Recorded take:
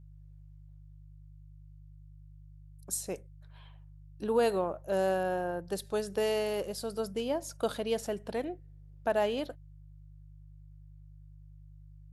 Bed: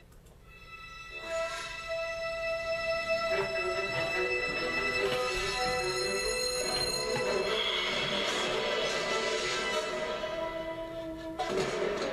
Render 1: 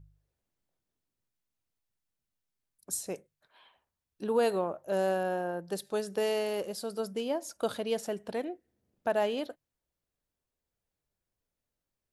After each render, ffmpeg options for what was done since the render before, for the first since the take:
-af "bandreject=f=50:t=h:w=4,bandreject=f=100:t=h:w=4,bandreject=f=150:t=h:w=4"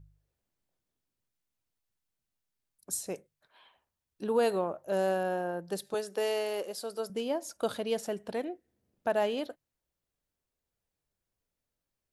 -filter_complex "[0:a]asettb=1/sr,asplit=3[s0][s1][s2];[s0]atrim=end=5.944[s3];[s1]atrim=start=5.94:end=7.1,asetpts=PTS-STARTPTS,afade=t=in:d=0.004:c=qsin,afade=t=out:st=1.156:d=0.004:c=qsin,highpass=320[s4];[s2]atrim=start=7.096[s5];[s3][s4]acrossfade=d=0.004:c1=hsin:c2=qsin[s6];[s6][s5]acrossfade=d=0.004:c1=qsin:c2=hsin"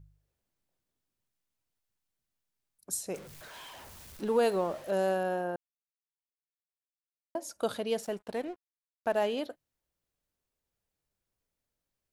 -filter_complex "[0:a]asettb=1/sr,asplit=3[s0][s1][s2];[s0]atrim=end=3.144[s3];[s1]atrim=start=3.14:end=4.91,asetpts=PTS-STARTPTS,afade=t=in:d=0.004:c=qsin,afade=t=out:st=1.766:d=0.004:c=qsin,aeval=exprs='val(0)+0.5*0.00708*sgn(val(0))':c=same[s4];[s2]atrim=start=4.906[s5];[s3][s4]acrossfade=d=0.004:c1=hsin:c2=qsin[s6];[s6][s5]acrossfade=d=0.004:c1=qsin:c2=hsin,asettb=1/sr,asplit=3[s7][s8][s9];[s7]atrim=end=8.034[s10];[s8]atrim=start=8.03:end=9.26,asetpts=PTS-STARTPTS,afade=t=in:d=0.004:c=qsin,afade=t=out:st=1.226:d=0.004:c=qsin,aeval=exprs='sgn(val(0))*max(abs(val(0))-0.00266,0)':c=same[s11];[s9]atrim=start=9.256[s12];[s10][s11]acrossfade=d=0.004:c1=hsin:c2=qsin[s13];[s13][s12]acrossfade=d=0.004:c1=qsin:c2=hsin,asplit=3[s14][s15][s16];[s14]atrim=end=5.56,asetpts=PTS-STARTPTS,afade=t=out:st=5.556:d=0.004:c=hsin[s17];[s15]atrim=start=5.56:end=7.35,asetpts=PTS-STARTPTS,volume=0[s18];[s16]atrim=start=7.35,asetpts=PTS-STARTPTS,afade=t=in:d=0.004:c=hsin[s19];[s17][s18][s19]concat=n=3:v=0:a=1"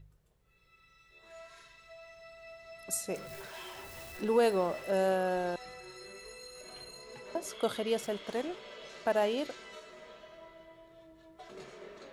-filter_complex "[1:a]volume=0.133[s0];[0:a][s0]amix=inputs=2:normalize=0"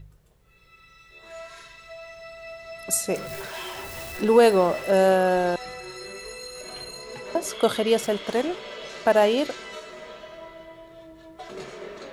-af "volume=3.35"

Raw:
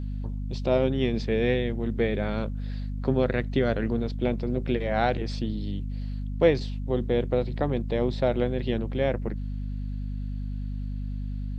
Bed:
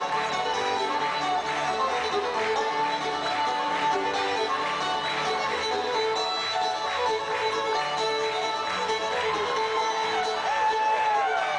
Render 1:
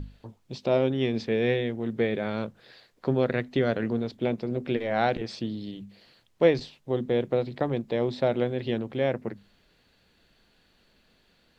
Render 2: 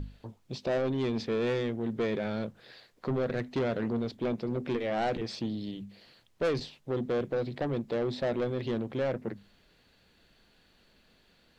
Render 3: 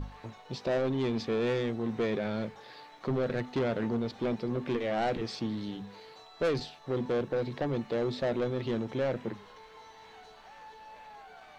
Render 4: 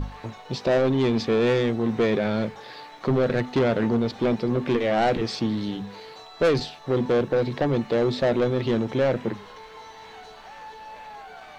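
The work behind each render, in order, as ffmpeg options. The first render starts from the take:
-af "bandreject=f=50:t=h:w=6,bandreject=f=100:t=h:w=6,bandreject=f=150:t=h:w=6,bandreject=f=200:t=h:w=6,bandreject=f=250:t=h:w=6"
-af "asoftclip=type=tanh:threshold=0.0596"
-filter_complex "[1:a]volume=0.0501[s0];[0:a][s0]amix=inputs=2:normalize=0"
-af "volume=2.66"

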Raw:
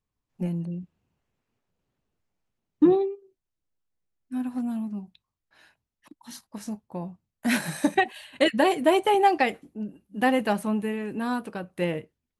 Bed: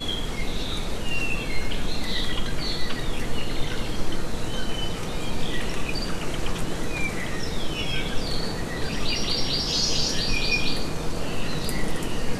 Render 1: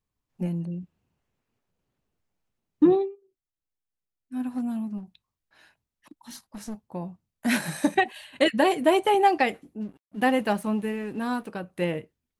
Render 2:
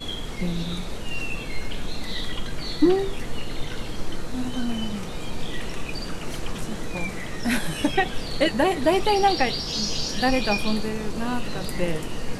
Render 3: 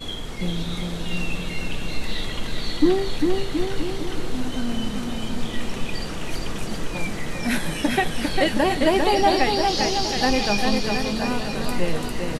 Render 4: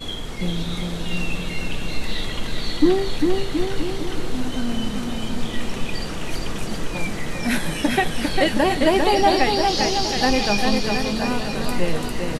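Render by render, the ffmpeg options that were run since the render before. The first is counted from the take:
-filter_complex "[0:a]asplit=3[s0][s1][s2];[s0]afade=t=out:st=4.97:d=0.02[s3];[s1]aeval=exprs='clip(val(0),-1,0.0141)':c=same,afade=t=in:st=4.97:d=0.02,afade=t=out:st=6.74:d=0.02[s4];[s2]afade=t=in:st=6.74:d=0.02[s5];[s3][s4][s5]amix=inputs=3:normalize=0,asplit=3[s6][s7][s8];[s6]afade=t=out:st=9.8:d=0.02[s9];[s7]aeval=exprs='sgn(val(0))*max(abs(val(0))-0.00237,0)':c=same,afade=t=in:st=9.8:d=0.02,afade=t=out:st=11.47:d=0.02[s10];[s8]afade=t=in:st=11.47:d=0.02[s11];[s9][s10][s11]amix=inputs=3:normalize=0,asplit=3[s12][s13][s14];[s12]atrim=end=3.12,asetpts=PTS-STARTPTS,afade=t=out:st=2.99:d=0.13:silence=0.398107[s15];[s13]atrim=start=3.12:end=4.28,asetpts=PTS-STARTPTS,volume=0.398[s16];[s14]atrim=start=4.28,asetpts=PTS-STARTPTS,afade=t=in:d=0.13:silence=0.398107[s17];[s15][s16][s17]concat=n=3:v=0:a=1"
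-filter_complex "[1:a]volume=0.668[s0];[0:a][s0]amix=inputs=2:normalize=0"
-af "aecho=1:1:400|720|976|1181|1345:0.631|0.398|0.251|0.158|0.1"
-af "volume=1.19"

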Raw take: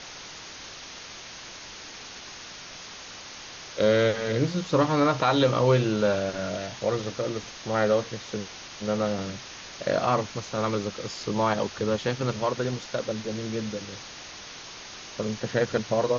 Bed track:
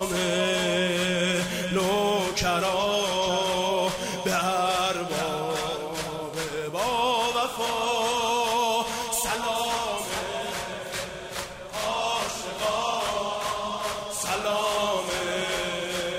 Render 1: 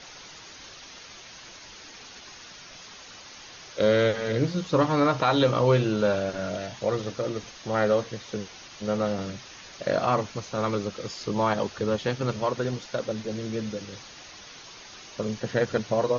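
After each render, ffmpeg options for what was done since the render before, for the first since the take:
-af "afftdn=nr=6:nf=-42"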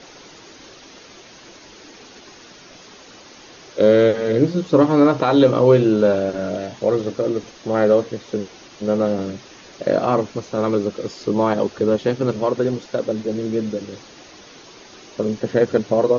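-af "equalizer=f=340:t=o:w=1.9:g=11.5"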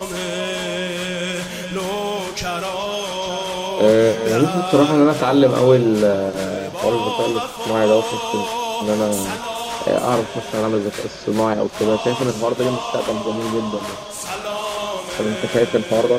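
-filter_complex "[1:a]volume=1.06[s0];[0:a][s0]amix=inputs=2:normalize=0"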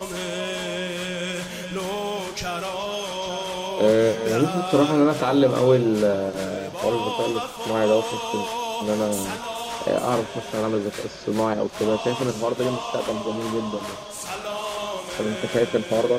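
-af "volume=0.596"

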